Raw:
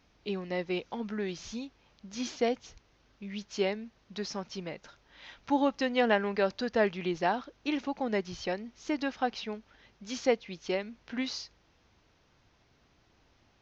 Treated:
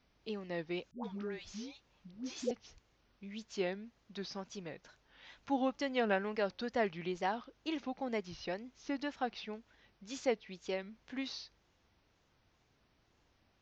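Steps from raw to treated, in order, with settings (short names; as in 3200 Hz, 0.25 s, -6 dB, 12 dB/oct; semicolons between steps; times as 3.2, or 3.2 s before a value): wow and flutter 130 cents; 0.91–2.51 dispersion highs, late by 0.123 s, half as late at 520 Hz; gain -6.5 dB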